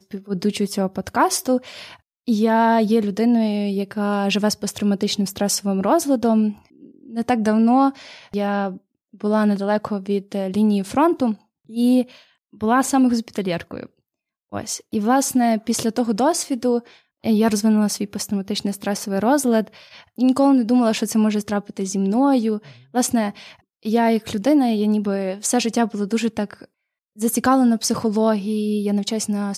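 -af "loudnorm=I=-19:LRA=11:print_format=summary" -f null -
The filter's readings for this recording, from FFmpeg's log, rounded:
Input Integrated:    -20.2 LUFS
Input True Peak:      -5.5 dBTP
Input LRA:             1.9 LU
Input Threshold:     -30.7 LUFS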